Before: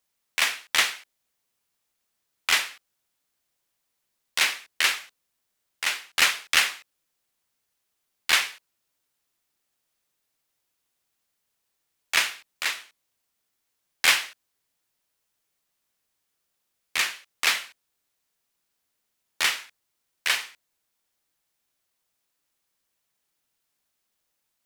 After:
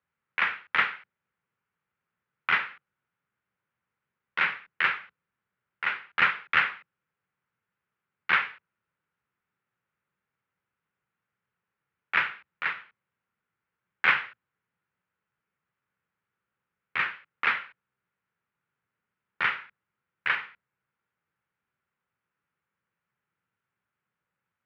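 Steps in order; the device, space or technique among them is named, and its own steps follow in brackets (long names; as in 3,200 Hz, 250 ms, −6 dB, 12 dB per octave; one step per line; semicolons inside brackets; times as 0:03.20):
sub-octave bass pedal (sub-octave generator, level −4 dB; loudspeaker in its box 79–2,300 Hz, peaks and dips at 130 Hz +4 dB, 180 Hz +5 dB, 290 Hz −6 dB, 670 Hz −8 dB, 1,400 Hz +6 dB)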